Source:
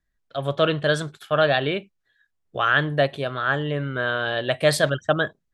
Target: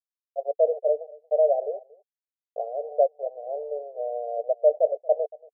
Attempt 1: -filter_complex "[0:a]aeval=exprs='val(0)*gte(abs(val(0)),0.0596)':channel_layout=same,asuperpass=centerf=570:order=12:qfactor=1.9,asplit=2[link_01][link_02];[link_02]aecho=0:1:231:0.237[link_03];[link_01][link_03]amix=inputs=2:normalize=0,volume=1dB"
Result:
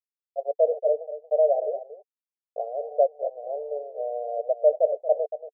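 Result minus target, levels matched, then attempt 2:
echo-to-direct +10 dB
-filter_complex "[0:a]aeval=exprs='val(0)*gte(abs(val(0)),0.0596)':channel_layout=same,asuperpass=centerf=570:order=12:qfactor=1.9,asplit=2[link_01][link_02];[link_02]aecho=0:1:231:0.075[link_03];[link_01][link_03]amix=inputs=2:normalize=0,volume=1dB"

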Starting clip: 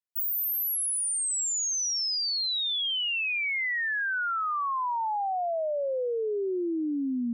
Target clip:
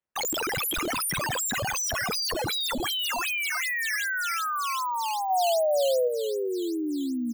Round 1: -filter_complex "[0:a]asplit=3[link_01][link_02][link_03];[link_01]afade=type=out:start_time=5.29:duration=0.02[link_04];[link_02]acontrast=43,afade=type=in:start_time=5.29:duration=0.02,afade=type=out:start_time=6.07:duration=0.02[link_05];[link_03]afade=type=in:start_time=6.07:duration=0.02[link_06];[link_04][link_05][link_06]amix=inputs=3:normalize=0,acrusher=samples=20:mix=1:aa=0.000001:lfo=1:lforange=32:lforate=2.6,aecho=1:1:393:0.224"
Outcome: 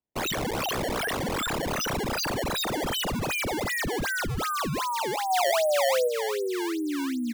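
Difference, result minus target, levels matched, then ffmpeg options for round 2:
sample-and-hold swept by an LFO: distortion +7 dB
-filter_complex "[0:a]asplit=3[link_01][link_02][link_03];[link_01]afade=type=out:start_time=5.29:duration=0.02[link_04];[link_02]acontrast=43,afade=type=in:start_time=5.29:duration=0.02,afade=type=out:start_time=6.07:duration=0.02[link_05];[link_03]afade=type=in:start_time=6.07:duration=0.02[link_06];[link_04][link_05][link_06]amix=inputs=3:normalize=0,acrusher=samples=7:mix=1:aa=0.000001:lfo=1:lforange=11.2:lforate=2.6,aecho=1:1:393:0.224"

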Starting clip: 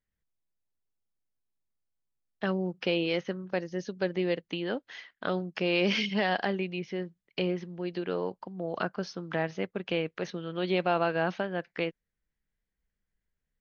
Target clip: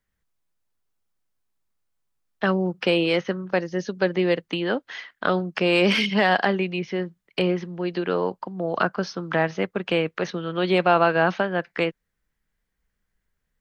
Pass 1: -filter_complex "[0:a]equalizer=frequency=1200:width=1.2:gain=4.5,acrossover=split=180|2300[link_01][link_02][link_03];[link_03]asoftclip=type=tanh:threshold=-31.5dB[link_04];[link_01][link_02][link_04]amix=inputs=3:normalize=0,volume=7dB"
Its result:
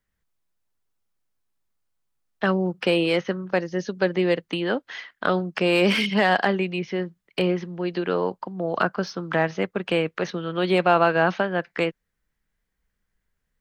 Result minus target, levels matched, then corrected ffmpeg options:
soft clipping: distortion +7 dB
-filter_complex "[0:a]equalizer=frequency=1200:width=1.2:gain=4.5,acrossover=split=180|2300[link_01][link_02][link_03];[link_03]asoftclip=type=tanh:threshold=-25.5dB[link_04];[link_01][link_02][link_04]amix=inputs=3:normalize=0,volume=7dB"

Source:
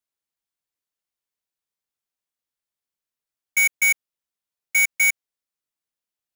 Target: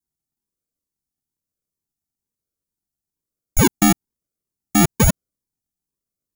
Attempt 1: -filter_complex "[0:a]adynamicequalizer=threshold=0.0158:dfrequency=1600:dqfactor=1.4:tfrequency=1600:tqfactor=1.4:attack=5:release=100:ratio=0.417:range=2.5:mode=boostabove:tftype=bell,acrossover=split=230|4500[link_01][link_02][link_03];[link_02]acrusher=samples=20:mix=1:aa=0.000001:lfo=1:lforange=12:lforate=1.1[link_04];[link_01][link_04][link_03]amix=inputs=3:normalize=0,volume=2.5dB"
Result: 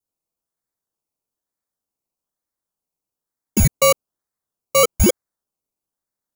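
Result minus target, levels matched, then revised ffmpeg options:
sample-and-hold swept by an LFO: distortion −6 dB
-filter_complex "[0:a]adynamicequalizer=threshold=0.0158:dfrequency=1600:dqfactor=1.4:tfrequency=1600:tqfactor=1.4:attack=5:release=100:ratio=0.417:range=2.5:mode=boostabove:tftype=bell,acrossover=split=230|4500[link_01][link_02][link_03];[link_02]acrusher=samples=67:mix=1:aa=0.000001:lfo=1:lforange=40.2:lforate=1.1[link_04];[link_01][link_04][link_03]amix=inputs=3:normalize=0,volume=2.5dB"

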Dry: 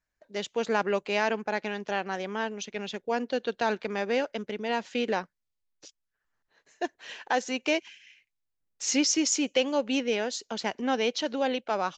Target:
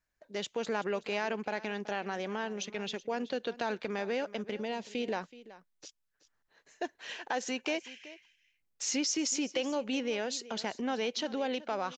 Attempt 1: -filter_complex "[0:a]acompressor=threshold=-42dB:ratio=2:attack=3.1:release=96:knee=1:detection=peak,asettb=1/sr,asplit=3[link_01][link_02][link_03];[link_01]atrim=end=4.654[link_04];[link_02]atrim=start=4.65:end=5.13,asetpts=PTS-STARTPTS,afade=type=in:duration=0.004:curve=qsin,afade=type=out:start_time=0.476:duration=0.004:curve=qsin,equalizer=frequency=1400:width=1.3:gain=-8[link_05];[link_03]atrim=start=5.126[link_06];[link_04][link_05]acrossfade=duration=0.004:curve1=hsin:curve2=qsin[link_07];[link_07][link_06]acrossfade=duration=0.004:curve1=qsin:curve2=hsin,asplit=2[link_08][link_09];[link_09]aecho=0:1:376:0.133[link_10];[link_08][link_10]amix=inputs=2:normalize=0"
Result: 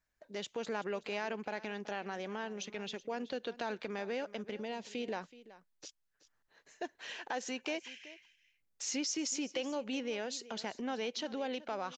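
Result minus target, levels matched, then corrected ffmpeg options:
downward compressor: peak gain reduction +4.5 dB
-filter_complex "[0:a]acompressor=threshold=-33dB:ratio=2:attack=3.1:release=96:knee=1:detection=peak,asettb=1/sr,asplit=3[link_01][link_02][link_03];[link_01]atrim=end=4.654[link_04];[link_02]atrim=start=4.65:end=5.13,asetpts=PTS-STARTPTS,afade=type=in:duration=0.004:curve=qsin,afade=type=out:start_time=0.476:duration=0.004:curve=qsin,equalizer=frequency=1400:width=1.3:gain=-8[link_05];[link_03]atrim=start=5.126[link_06];[link_04][link_05]acrossfade=duration=0.004:curve1=hsin:curve2=qsin[link_07];[link_07][link_06]acrossfade=duration=0.004:curve1=qsin:curve2=hsin,asplit=2[link_08][link_09];[link_09]aecho=0:1:376:0.133[link_10];[link_08][link_10]amix=inputs=2:normalize=0"

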